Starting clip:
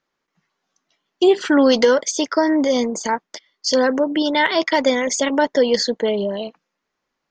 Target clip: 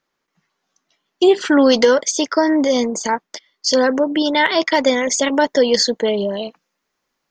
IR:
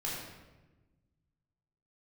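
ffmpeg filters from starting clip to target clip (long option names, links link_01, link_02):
-af "asetnsamples=nb_out_samples=441:pad=0,asendcmd='5.24 highshelf g 10.5',highshelf=frequency=6400:gain=3.5,volume=1.5dB"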